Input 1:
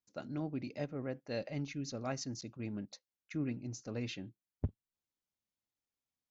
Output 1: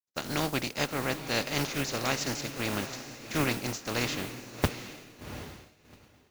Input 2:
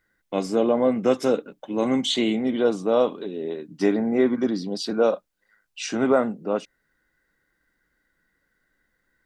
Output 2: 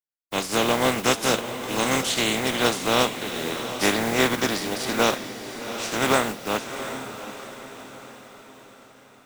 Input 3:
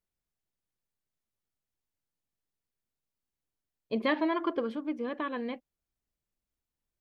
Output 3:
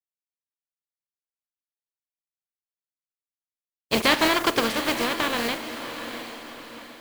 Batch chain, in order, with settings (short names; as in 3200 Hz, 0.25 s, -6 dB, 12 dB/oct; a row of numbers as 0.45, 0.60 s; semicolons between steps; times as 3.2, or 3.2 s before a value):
spectral contrast lowered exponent 0.38; diffused feedback echo 0.742 s, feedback 47%, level -10 dB; expander -49 dBFS; normalise peaks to -6 dBFS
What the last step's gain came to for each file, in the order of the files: +8.5, -1.0, +8.5 dB